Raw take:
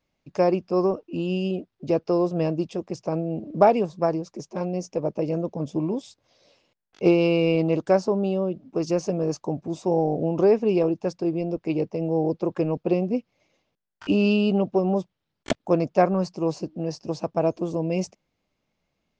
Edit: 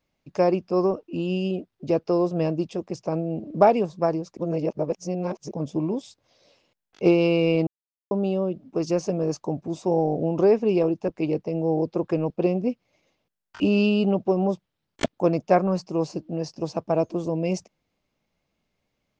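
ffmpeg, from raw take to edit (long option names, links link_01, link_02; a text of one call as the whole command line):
ffmpeg -i in.wav -filter_complex "[0:a]asplit=6[link_01][link_02][link_03][link_04][link_05][link_06];[link_01]atrim=end=4.372[link_07];[link_02]atrim=start=4.368:end=5.512,asetpts=PTS-STARTPTS,areverse[link_08];[link_03]atrim=start=5.508:end=7.67,asetpts=PTS-STARTPTS,afade=type=out:start_time=2.158:duration=0.004:curve=hsin[link_09];[link_04]atrim=start=7.67:end=8.11,asetpts=PTS-STARTPTS,volume=0[link_10];[link_05]atrim=start=8.11:end=11.082,asetpts=PTS-STARTPTS,afade=type=in:duration=0.004:curve=hsin[link_11];[link_06]atrim=start=11.548[link_12];[link_07][link_08]acrossfade=duration=0.004:curve1=hsin:curve2=hsin[link_13];[link_09][link_10][link_11]concat=n=3:v=0:a=1[link_14];[link_13][link_14]acrossfade=duration=0.004:curve1=hsin:curve2=hsin[link_15];[link_15][link_12]acrossfade=duration=0.004:curve1=hsin:curve2=hsin" out.wav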